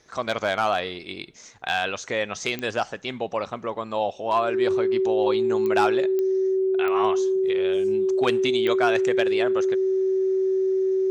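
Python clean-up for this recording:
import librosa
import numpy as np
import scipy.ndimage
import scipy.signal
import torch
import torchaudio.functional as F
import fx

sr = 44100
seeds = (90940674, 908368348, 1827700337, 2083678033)

y = fx.fix_declick_ar(x, sr, threshold=10.0)
y = fx.notch(y, sr, hz=380.0, q=30.0)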